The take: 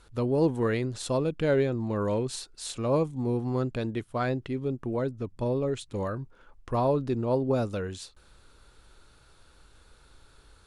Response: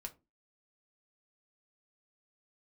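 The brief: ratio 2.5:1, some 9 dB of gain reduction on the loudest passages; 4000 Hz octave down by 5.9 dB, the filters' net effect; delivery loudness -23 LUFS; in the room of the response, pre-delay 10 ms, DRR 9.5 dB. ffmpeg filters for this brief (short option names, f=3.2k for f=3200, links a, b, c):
-filter_complex "[0:a]equalizer=f=4k:t=o:g=-7,acompressor=threshold=-34dB:ratio=2.5,asplit=2[a][b];[1:a]atrim=start_sample=2205,adelay=10[c];[b][c]afir=irnorm=-1:irlink=0,volume=-5.5dB[d];[a][d]amix=inputs=2:normalize=0,volume=12.5dB"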